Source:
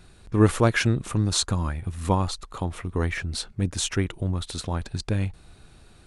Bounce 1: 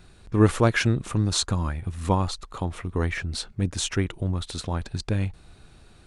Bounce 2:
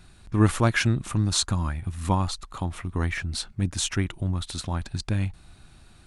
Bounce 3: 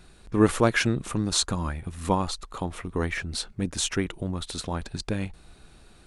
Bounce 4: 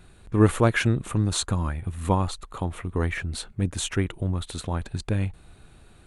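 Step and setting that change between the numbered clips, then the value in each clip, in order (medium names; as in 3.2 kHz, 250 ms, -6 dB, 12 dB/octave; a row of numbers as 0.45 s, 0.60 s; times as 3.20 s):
peaking EQ, frequency: 14 kHz, 460 Hz, 99 Hz, 5.2 kHz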